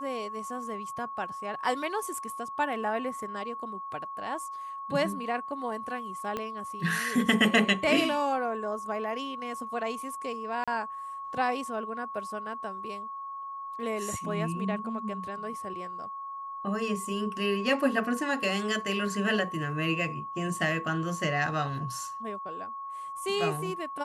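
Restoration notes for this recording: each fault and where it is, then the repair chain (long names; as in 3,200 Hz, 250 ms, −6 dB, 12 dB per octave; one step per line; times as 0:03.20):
whistle 1,100 Hz −36 dBFS
0:06.37: click −19 dBFS
0:10.64–0:10.68: drop-out 36 ms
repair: click removal
notch filter 1,100 Hz, Q 30
repair the gap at 0:10.64, 36 ms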